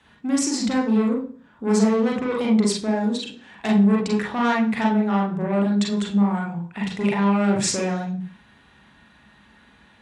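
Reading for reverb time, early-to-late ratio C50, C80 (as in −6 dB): 0.45 s, 5.0 dB, 12.5 dB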